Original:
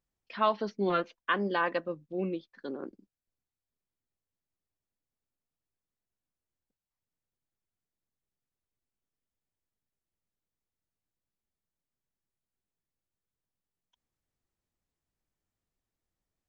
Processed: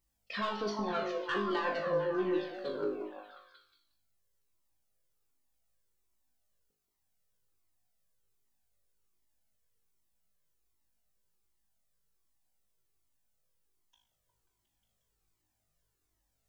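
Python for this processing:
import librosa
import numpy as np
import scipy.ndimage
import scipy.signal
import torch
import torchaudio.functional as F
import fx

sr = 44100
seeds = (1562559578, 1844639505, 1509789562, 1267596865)

p1 = fx.high_shelf(x, sr, hz=5100.0, db=8.5)
p2 = fx.over_compress(p1, sr, threshold_db=-33.0, ratio=-0.5)
p3 = p1 + F.gain(torch.from_numpy(p2), 1.5).numpy()
p4 = 10.0 ** (-18.5 / 20.0) * np.tanh(p3 / 10.0 ** (-18.5 / 20.0))
p5 = fx.comb_fb(p4, sr, f0_hz=52.0, decay_s=0.58, harmonics='all', damping=0.0, mix_pct=90)
p6 = p5 + fx.echo_stepped(p5, sr, ms=179, hz=480.0, octaves=0.7, feedback_pct=70, wet_db=-0.5, dry=0)
p7 = fx.comb_cascade(p6, sr, direction='falling', hz=1.3)
y = F.gain(torch.from_numpy(p7), 7.5).numpy()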